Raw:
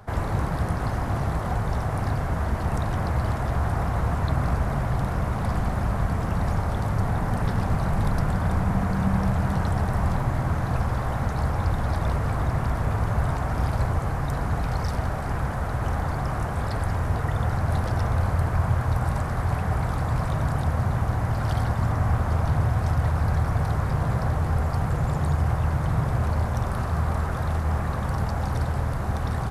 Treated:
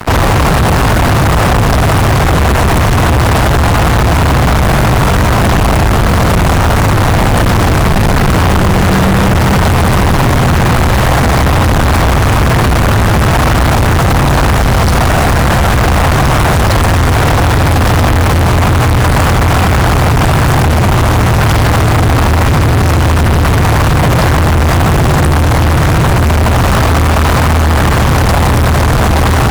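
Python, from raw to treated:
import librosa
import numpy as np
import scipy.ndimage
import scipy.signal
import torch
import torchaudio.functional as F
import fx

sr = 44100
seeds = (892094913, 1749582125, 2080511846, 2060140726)

y = fx.fuzz(x, sr, gain_db=42.0, gate_db=-44.0)
y = fx.quant_companded(y, sr, bits=6)
y = y * librosa.db_to_amplitude(6.0)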